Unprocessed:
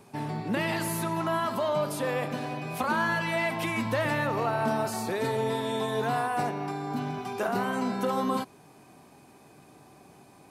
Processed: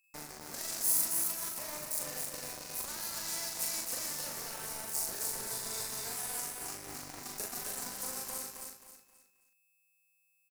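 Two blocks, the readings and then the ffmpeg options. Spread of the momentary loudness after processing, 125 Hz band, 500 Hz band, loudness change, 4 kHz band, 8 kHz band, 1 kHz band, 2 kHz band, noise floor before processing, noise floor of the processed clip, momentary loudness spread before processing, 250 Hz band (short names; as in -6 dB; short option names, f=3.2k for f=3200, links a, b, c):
12 LU, -21.0 dB, -19.0 dB, -5.5 dB, -2.0 dB, +10.0 dB, -18.0 dB, -15.0 dB, -55 dBFS, -73 dBFS, 6 LU, -21.0 dB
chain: -filter_complex "[0:a]highshelf=f=2.5k:g=-8.5,acrossover=split=340|5700[a][b][c];[a]acompressor=threshold=-49dB:ratio=12[d];[b]alimiter=level_in=4.5dB:limit=-24dB:level=0:latency=1:release=248,volume=-4.5dB[e];[d][e][c]amix=inputs=3:normalize=0,acrossover=split=140|3000[f][g][h];[g]acompressor=threshold=-50dB:ratio=1.5[i];[f][i][h]amix=inputs=3:normalize=0,acrusher=bits=5:mix=0:aa=0.5,flanger=delay=0.5:depth=6:regen=-78:speed=1.7:shape=triangular,aeval=exprs='val(0)+0.000224*sin(2*PI*2600*n/s)':c=same,acrusher=bits=6:mode=log:mix=0:aa=0.000001,aexciter=amount=7.8:drive=5.6:freq=4.7k,asplit=2[j][k];[k]adelay=40,volume=-3dB[l];[j][l]amix=inputs=2:normalize=0,asplit=2[m][n];[n]aecho=0:1:266|532|798|1064:0.631|0.208|0.0687|0.0227[o];[m][o]amix=inputs=2:normalize=0"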